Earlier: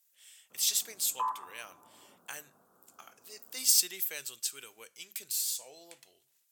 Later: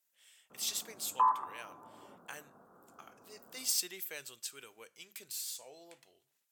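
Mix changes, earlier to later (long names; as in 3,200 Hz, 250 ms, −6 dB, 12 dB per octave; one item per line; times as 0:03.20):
background +6.5 dB
master: add high-shelf EQ 3,000 Hz −9.5 dB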